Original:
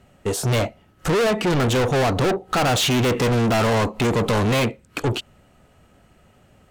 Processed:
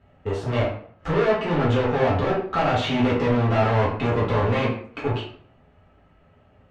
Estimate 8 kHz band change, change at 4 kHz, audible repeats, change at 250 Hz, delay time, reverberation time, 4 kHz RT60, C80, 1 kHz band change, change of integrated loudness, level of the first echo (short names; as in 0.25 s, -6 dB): under -20 dB, -8.0 dB, none, -2.5 dB, none, 0.55 s, 0.40 s, 10.0 dB, -1.0 dB, -2.0 dB, none